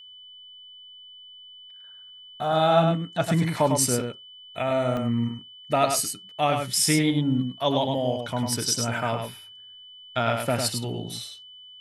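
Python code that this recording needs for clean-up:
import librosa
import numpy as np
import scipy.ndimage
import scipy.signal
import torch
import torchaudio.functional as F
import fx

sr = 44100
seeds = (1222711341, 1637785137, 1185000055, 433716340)

y = fx.notch(x, sr, hz=3000.0, q=30.0)
y = fx.fix_interpolate(y, sr, at_s=(3.28, 4.97), length_ms=1.0)
y = fx.fix_echo_inverse(y, sr, delay_ms=102, level_db=-5.5)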